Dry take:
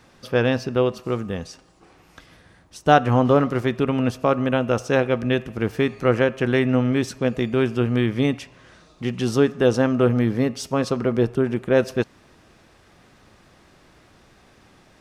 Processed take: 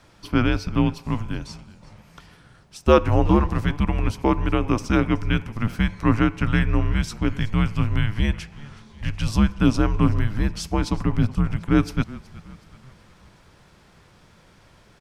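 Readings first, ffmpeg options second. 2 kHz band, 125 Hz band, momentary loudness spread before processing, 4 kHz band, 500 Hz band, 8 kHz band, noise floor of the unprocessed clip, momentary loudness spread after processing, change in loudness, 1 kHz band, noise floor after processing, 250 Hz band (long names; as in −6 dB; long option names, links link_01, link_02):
−2.0 dB, +2.5 dB, 9 LU, −1.0 dB, −7.0 dB, −1.0 dB, −55 dBFS, 10 LU, −1.5 dB, −3.0 dB, −54 dBFS, −0.5 dB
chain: -filter_complex "[0:a]asplit=5[link_01][link_02][link_03][link_04][link_05];[link_02]adelay=372,afreqshift=-61,volume=-19.5dB[link_06];[link_03]adelay=744,afreqshift=-122,volume=-25.7dB[link_07];[link_04]adelay=1116,afreqshift=-183,volume=-31.9dB[link_08];[link_05]adelay=1488,afreqshift=-244,volume=-38.1dB[link_09];[link_01][link_06][link_07][link_08][link_09]amix=inputs=5:normalize=0,afreqshift=-220"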